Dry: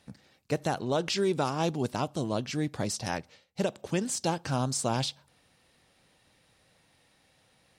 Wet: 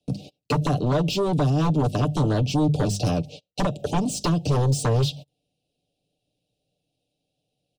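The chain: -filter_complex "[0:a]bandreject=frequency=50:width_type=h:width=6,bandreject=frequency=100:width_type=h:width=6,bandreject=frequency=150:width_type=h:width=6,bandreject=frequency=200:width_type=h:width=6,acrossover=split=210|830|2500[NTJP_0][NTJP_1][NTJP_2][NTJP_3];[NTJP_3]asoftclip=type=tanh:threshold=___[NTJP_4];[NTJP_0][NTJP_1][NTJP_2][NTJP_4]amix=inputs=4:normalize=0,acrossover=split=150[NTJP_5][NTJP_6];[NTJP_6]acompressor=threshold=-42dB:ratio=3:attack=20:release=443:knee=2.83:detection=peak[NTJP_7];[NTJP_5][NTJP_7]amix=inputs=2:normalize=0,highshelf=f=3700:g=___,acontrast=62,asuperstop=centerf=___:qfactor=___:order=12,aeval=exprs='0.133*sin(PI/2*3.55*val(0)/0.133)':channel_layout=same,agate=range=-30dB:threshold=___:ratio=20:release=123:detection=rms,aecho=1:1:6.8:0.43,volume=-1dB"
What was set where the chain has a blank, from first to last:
-34dB, -9, 1400, 0.75, -40dB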